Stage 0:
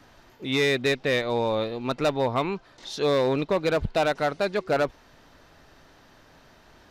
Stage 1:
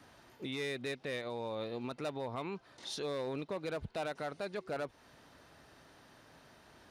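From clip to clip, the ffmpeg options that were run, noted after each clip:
-af "highpass=69,equalizer=f=9300:w=7.8:g=12.5,alimiter=level_in=1.19:limit=0.0631:level=0:latency=1:release=212,volume=0.841,volume=0.562"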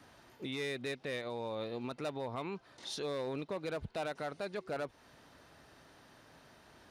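-af anull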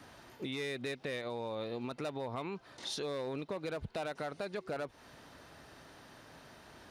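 -af "acompressor=threshold=0.00891:ratio=3,volume=1.68"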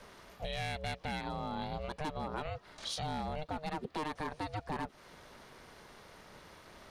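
-af "aeval=exprs='val(0)*sin(2*PI*310*n/s)':c=same,volume=1.5"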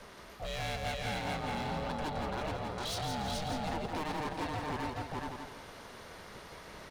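-filter_complex "[0:a]asplit=2[s0][s1];[s1]aecho=0:1:427:0.668[s2];[s0][s2]amix=inputs=2:normalize=0,asoftclip=type=hard:threshold=0.015,asplit=2[s3][s4];[s4]aecho=0:1:169|338|507|676|845:0.531|0.202|0.0767|0.0291|0.0111[s5];[s3][s5]amix=inputs=2:normalize=0,volume=1.41"

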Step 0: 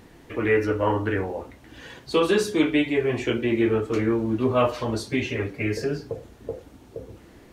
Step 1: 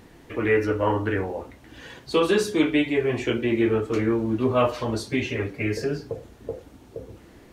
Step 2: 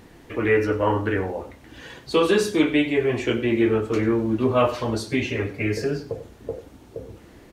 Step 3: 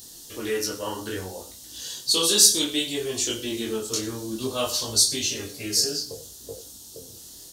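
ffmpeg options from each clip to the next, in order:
-af anull
-af "aecho=1:1:95:0.15,volume=1.19"
-af "aexciter=amount=15.3:drive=8.4:freq=3600,flanger=delay=19.5:depth=5.2:speed=0.61,volume=0.501"

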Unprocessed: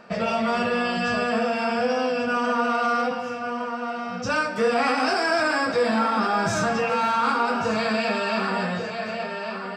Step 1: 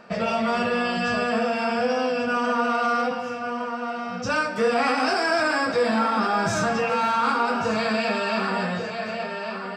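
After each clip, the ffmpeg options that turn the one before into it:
-af anull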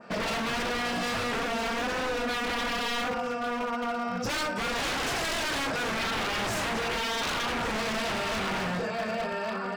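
-af "adynamicequalizer=threshold=0.00794:dfrequency=4000:dqfactor=0.79:tfrequency=4000:tqfactor=0.79:attack=5:release=100:ratio=0.375:range=2.5:mode=cutabove:tftype=bell,aeval=exprs='0.0562*(abs(mod(val(0)/0.0562+3,4)-2)-1)':c=same"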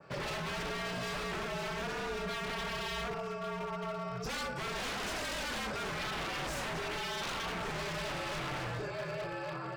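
-af "afreqshift=-60,volume=0.422"

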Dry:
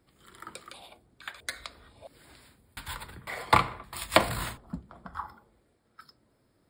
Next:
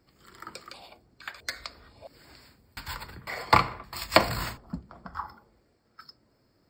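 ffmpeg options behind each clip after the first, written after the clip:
-af "superequalizer=13b=0.631:14b=2:16b=0.251,volume=1.19"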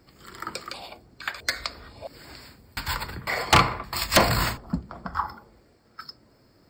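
-af "aeval=exprs='0.891*sin(PI/2*4.47*val(0)/0.891)':c=same,volume=0.376"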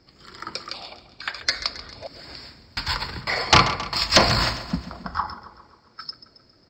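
-af "highshelf=f=7800:t=q:w=3:g=-14,dynaudnorm=f=520:g=5:m=3.76,aecho=1:1:135|270|405|540|675:0.2|0.108|0.0582|0.0314|0.017,volume=0.891"

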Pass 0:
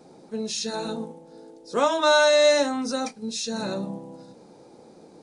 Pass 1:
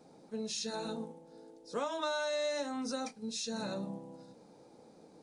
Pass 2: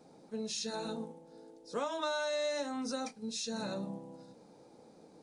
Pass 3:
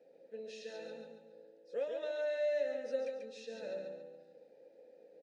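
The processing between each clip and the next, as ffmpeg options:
-af "bandreject=f=370:w=12,acompressor=threshold=0.0631:ratio=6,volume=0.398"
-af anull
-filter_complex "[0:a]asplit=3[s0][s1][s2];[s0]bandpass=f=530:t=q:w=8,volume=1[s3];[s1]bandpass=f=1840:t=q:w=8,volume=0.501[s4];[s2]bandpass=f=2480:t=q:w=8,volume=0.355[s5];[s3][s4][s5]amix=inputs=3:normalize=0,aecho=1:1:140|280|420|560|700:0.562|0.219|0.0855|0.0334|0.013,volume=1.88"

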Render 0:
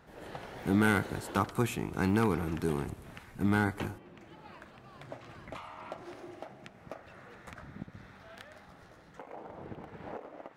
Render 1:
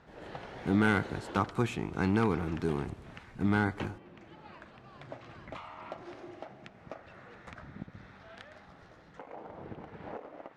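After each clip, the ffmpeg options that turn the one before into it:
-af "lowpass=5700"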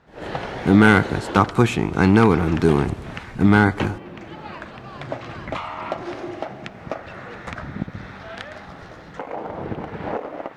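-af "dynaudnorm=f=120:g=3:m=5.31,volume=1.12"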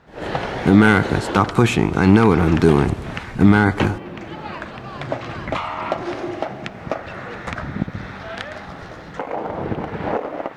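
-af "alimiter=level_in=1.88:limit=0.891:release=50:level=0:latency=1,volume=0.891"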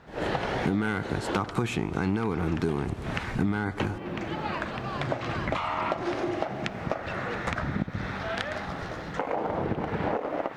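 -af "acompressor=threshold=0.0562:ratio=5"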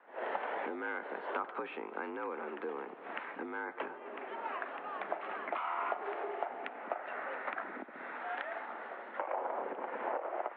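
-filter_complex "[0:a]acrossover=split=390 2200:gain=0.178 1 0.2[s0][s1][s2];[s0][s1][s2]amix=inputs=3:normalize=0,highpass=f=180:t=q:w=0.5412,highpass=f=180:t=q:w=1.307,lowpass=f=3300:t=q:w=0.5176,lowpass=f=3300:t=q:w=0.7071,lowpass=f=3300:t=q:w=1.932,afreqshift=56,volume=0.531"

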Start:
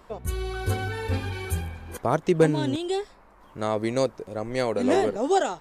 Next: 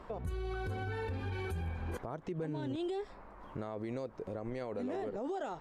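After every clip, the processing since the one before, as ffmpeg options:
-af "lowpass=f=1800:p=1,acompressor=threshold=0.0282:ratio=5,alimiter=level_in=2.82:limit=0.0631:level=0:latency=1:release=63,volume=0.355,volume=1.33"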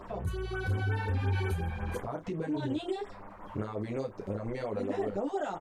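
-filter_complex "[0:a]asplit=2[s0][s1];[s1]aecho=0:1:10|30|53:0.631|0.422|0.141[s2];[s0][s2]amix=inputs=2:normalize=0,afftfilt=real='re*(1-between(b*sr/1024,290*pow(5300/290,0.5+0.5*sin(2*PI*5.6*pts/sr))/1.41,290*pow(5300/290,0.5+0.5*sin(2*PI*5.6*pts/sr))*1.41))':imag='im*(1-between(b*sr/1024,290*pow(5300/290,0.5+0.5*sin(2*PI*5.6*pts/sr))/1.41,290*pow(5300/290,0.5+0.5*sin(2*PI*5.6*pts/sr))*1.41))':win_size=1024:overlap=0.75,volume=1.58"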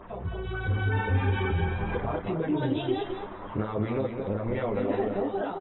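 -af "dynaudnorm=f=150:g=9:m=1.78,aecho=1:1:214|428|642:0.473|0.0994|0.0209" -ar 22050 -c:a aac -b:a 16k

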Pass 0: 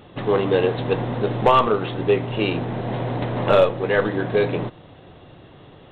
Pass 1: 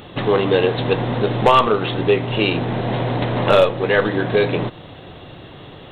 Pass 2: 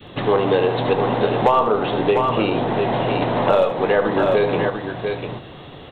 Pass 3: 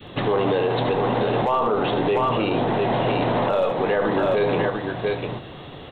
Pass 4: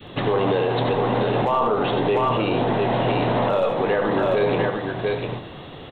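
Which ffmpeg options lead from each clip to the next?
-filter_complex "[0:a]highshelf=f=3000:g=8.5,asplit=2[s0][s1];[s1]acompressor=threshold=0.0447:ratio=6,volume=1.12[s2];[s0][s2]amix=inputs=2:normalize=0"
-filter_complex "[0:a]aecho=1:1:73|696:0.251|0.398,adynamicequalizer=threshold=0.0398:dfrequency=830:dqfactor=1:tfrequency=830:tqfactor=1:attack=5:release=100:ratio=0.375:range=3.5:mode=boostabove:tftype=bell,acrossover=split=120|1100[s0][s1][s2];[s0]acompressor=threshold=0.02:ratio=4[s3];[s1]acompressor=threshold=0.224:ratio=4[s4];[s2]acompressor=threshold=0.0447:ratio=4[s5];[s3][s4][s5]amix=inputs=3:normalize=0,volume=0.891"
-af "alimiter=limit=0.224:level=0:latency=1:release=20"
-af "aecho=1:1:92:0.316"

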